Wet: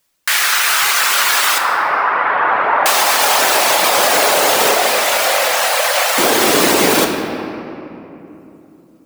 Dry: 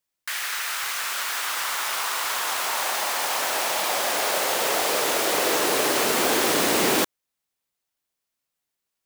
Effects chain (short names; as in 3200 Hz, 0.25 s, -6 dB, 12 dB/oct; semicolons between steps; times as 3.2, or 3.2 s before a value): 1.58–2.86 LPF 1800 Hz 24 dB/oct; reverb removal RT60 1.2 s; compressor, threshold -28 dBFS, peak gain reduction 7.5 dB; 4.74–6.18 rippled Chebyshev high-pass 510 Hz, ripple 3 dB; reverb RT60 3.1 s, pre-delay 7 ms, DRR 3 dB; maximiser +18.5 dB; gain -1 dB